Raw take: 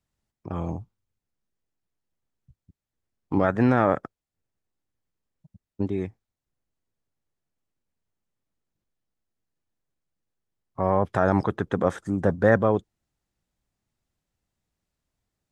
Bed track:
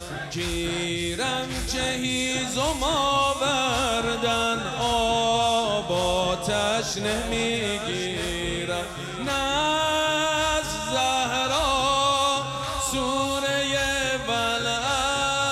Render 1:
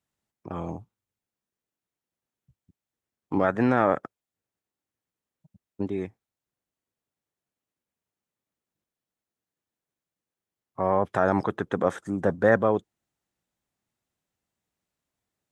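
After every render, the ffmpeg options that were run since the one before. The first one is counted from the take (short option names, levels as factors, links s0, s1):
-af "highpass=f=210:p=1,equalizer=f=4800:w=3:g=-3"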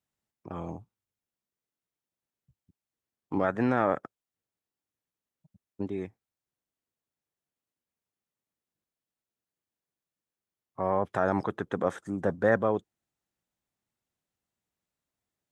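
-af "volume=0.631"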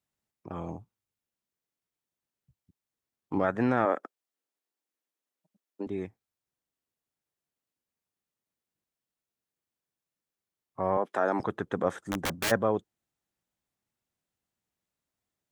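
-filter_complex "[0:a]asettb=1/sr,asplit=3[s0][s1][s2];[s0]atrim=end=3.854[s3];[s1]atrim=start=3.85:end=5.87,asetpts=PTS-STARTPTS,afade=t=in:d=0.004:c=qsin,afade=t=out:st=2.016:d=0.004:c=qsin,highpass=f=250:w=0.5412,highpass=f=250:w=1.3066[s4];[s2]atrim=start=5.866[s5];[s3][s4]acrossfade=d=0.004:c1=hsin:c2=qsin[s6];[s6][s5]acrossfade=d=0.004:c1=qsin:c2=hsin,asettb=1/sr,asplit=3[s7][s8][s9];[s7]atrim=end=10.974[s10];[s8]atrim=start=10.97:end=11.4,asetpts=PTS-STARTPTS,afade=t=in:d=0.004:c=qsin,afade=t=out:st=0.426:d=0.004:c=qsin,highpass=f=230:w=0.5412,highpass=f=230:w=1.3066[s11];[s9]atrim=start=11.396[s12];[s10][s11]acrossfade=d=0.004:c1=hsin:c2=qsin[s13];[s13][s12]acrossfade=d=0.004:c1=qsin:c2=hsin,asplit=3[s14][s15][s16];[s14]afade=t=out:st=12.06:d=0.02[s17];[s15]aeval=exprs='(mod(15*val(0)+1,2)-1)/15':c=same,afade=t=in:st=12.06:d=0.02,afade=t=out:st=12.5:d=0.02[s18];[s16]afade=t=in:st=12.5:d=0.02[s19];[s17][s18][s19]amix=inputs=3:normalize=0"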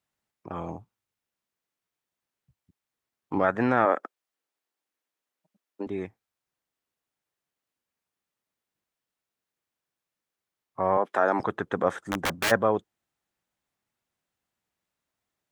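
-af "equalizer=f=1400:w=0.38:g=5.5"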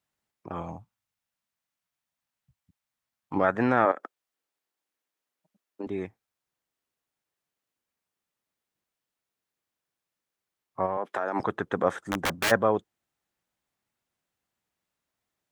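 -filter_complex "[0:a]asettb=1/sr,asplit=3[s0][s1][s2];[s0]atrim=end=0.624[s3];[s1]atrim=start=0.62:end=3.36,asetpts=PTS-STARTPTS,afade=t=in:d=0.004:c=qsin,afade=t=out:st=2.736:d=0.004:c=qsin,equalizer=f=380:t=o:w=0.68:g=-11[s4];[s2]atrim=start=3.356[s5];[s3][s4]acrossfade=d=0.004:c1=hsin:c2=qsin[s6];[s6][s5]acrossfade=d=0.004:c1=qsin:c2=hsin,asettb=1/sr,asplit=3[s7][s8][s9];[s7]atrim=end=3.914[s10];[s8]atrim=start=3.91:end=5.84,asetpts=PTS-STARTPTS,afade=t=in:d=0.004:c=qsin,afade=t=out:st=1.926:d=0.004:c=qsin,acompressor=threshold=0.0316:ratio=6:attack=3.2:release=140:knee=1:detection=peak[s11];[s9]atrim=start=5.836[s12];[s10][s11]acrossfade=d=0.004:c1=hsin:c2=qsin[s13];[s13][s12]acrossfade=d=0.004:c1=qsin:c2=hsin,asplit=3[s14][s15][s16];[s14]afade=t=out:st=10.85:d=0.02[s17];[s15]acompressor=threshold=0.0631:ratio=6:attack=3.2:release=140:knee=1:detection=peak,afade=t=in:st=10.85:d=0.02,afade=t=out:st=11.35:d=0.02[s18];[s16]afade=t=in:st=11.35:d=0.02[s19];[s17][s18][s19]amix=inputs=3:normalize=0"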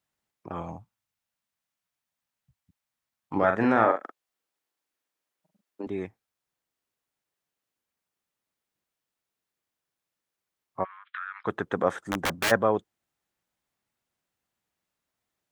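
-filter_complex "[0:a]asettb=1/sr,asplit=3[s0][s1][s2];[s0]atrim=end=3.384[s3];[s1]atrim=start=3.38:end=5.83,asetpts=PTS-STARTPTS,afade=t=in:d=0.004:c=qsin,afade=t=out:st=2.446:d=0.004:c=qsin,asplit=2[s4][s5];[s5]adelay=44,volume=0.501[s6];[s4][s6]amix=inputs=2:normalize=0,atrim=end_sample=108045[s7];[s2]atrim=start=5.826[s8];[s3][s7]acrossfade=d=0.004:c1=hsin:c2=qsin[s9];[s9][s8]acrossfade=d=0.004:c1=qsin:c2=hsin,asplit=3[s10][s11][s12];[s10]afade=t=out:st=10.83:d=0.02[s13];[s11]asuperpass=centerf=2200:order=12:qfactor=0.83,afade=t=in:st=10.83:d=0.02,afade=t=out:st=11.45:d=0.02[s14];[s12]afade=t=in:st=11.45:d=0.02[s15];[s13][s14][s15]amix=inputs=3:normalize=0"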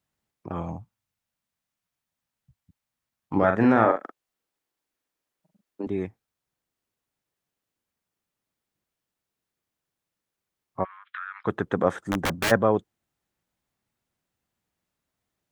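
-af "lowshelf=f=340:g=7.5"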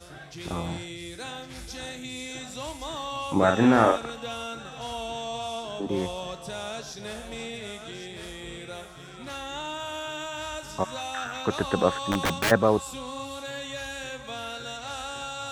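-filter_complex "[1:a]volume=0.266[s0];[0:a][s0]amix=inputs=2:normalize=0"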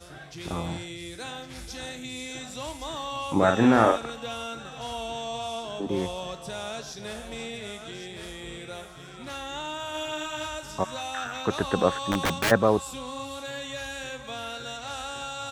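-filter_complex "[0:a]asplit=3[s0][s1][s2];[s0]afade=t=out:st=9.94:d=0.02[s3];[s1]asplit=2[s4][s5];[s5]adelay=39,volume=0.708[s6];[s4][s6]amix=inputs=2:normalize=0,afade=t=in:st=9.94:d=0.02,afade=t=out:st=10.46:d=0.02[s7];[s2]afade=t=in:st=10.46:d=0.02[s8];[s3][s7][s8]amix=inputs=3:normalize=0"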